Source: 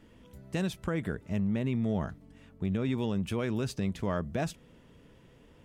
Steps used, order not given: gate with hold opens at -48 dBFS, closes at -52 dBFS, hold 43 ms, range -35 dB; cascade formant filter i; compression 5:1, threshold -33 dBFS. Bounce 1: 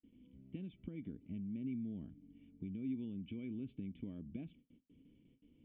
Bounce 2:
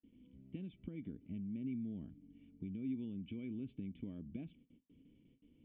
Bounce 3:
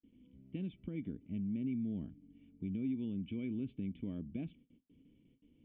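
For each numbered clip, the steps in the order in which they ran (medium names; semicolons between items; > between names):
compression > gate with hold > cascade formant filter; gate with hold > compression > cascade formant filter; gate with hold > cascade formant filter > compression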